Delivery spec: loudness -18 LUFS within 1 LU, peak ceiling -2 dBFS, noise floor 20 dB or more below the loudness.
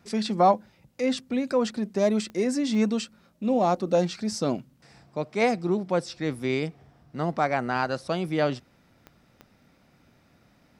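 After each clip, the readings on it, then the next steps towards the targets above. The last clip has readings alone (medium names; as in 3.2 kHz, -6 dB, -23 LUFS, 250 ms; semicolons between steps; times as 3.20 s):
clicks found 4; loudness -26.5 LUFS; peak level -8.5 dBFS; loudness target -18.0 LUFS
-> de-click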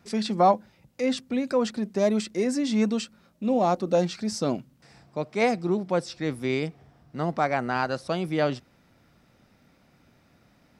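clicks found 0; loudness -26.5 LUFS; peak level -8.5 dBFS; loudness target -18.0 LUFS
-> trim +8.5 dB; peak limiter -2 dBFS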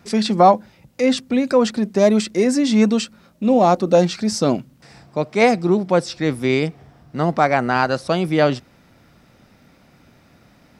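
loudness -18.0 LUFS; peak level -2.0 dBFS; noise floor -54 dBFS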